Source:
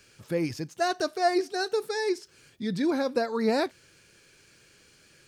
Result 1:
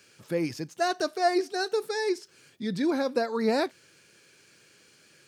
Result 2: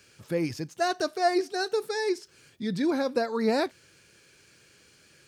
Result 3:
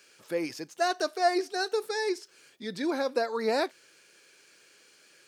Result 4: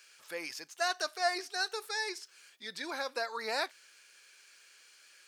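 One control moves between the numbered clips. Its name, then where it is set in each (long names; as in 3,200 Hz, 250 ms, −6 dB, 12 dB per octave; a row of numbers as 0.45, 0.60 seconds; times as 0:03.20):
high-pass filter, corner frequency: 140, 49, 360, 1,000 Hertz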